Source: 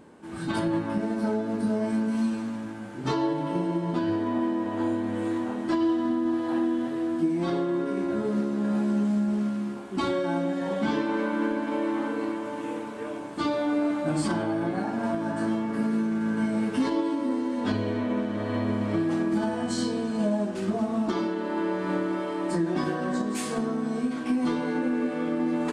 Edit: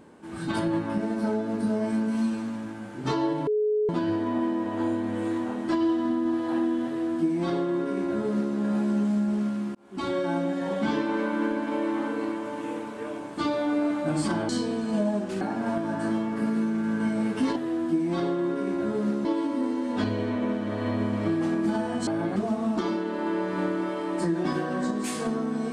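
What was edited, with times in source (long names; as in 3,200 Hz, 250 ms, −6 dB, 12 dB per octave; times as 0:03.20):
0:03.47–0:03.89: beep over 424 Hz −21 dBFS
0:06.86–0:08.55: duplicate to 0:16.93
0:09.75–0:10.18: fade in linear
0:14.49–0:14.78: swap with 0:19.75–0:20.67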